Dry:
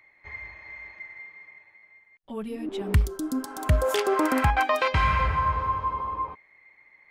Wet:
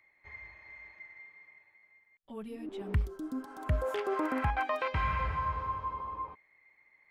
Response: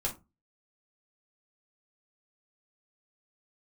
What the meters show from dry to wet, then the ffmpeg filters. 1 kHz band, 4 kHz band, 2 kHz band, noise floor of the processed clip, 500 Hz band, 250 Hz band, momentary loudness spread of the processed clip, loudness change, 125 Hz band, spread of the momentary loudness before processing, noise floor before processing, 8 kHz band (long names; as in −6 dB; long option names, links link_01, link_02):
−8.5 dB, −13.5 dB, −9.0 dB, −69 dBFS, −8.5 dB, −8.5 dB, 17 LU, −8.5 dB, −8.5 dB, 18 LU, −60 dBFS, −20.0 dB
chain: -filter_complex "[0:a]acrossover=split=3000[link_01][link_02];[link_02]acompressor=threshold=-47dB:ratio=4:attack=1:release=60[link_03];[link_01][link_03]amix=inputs=2:normalize=0,volume=-8.5dB"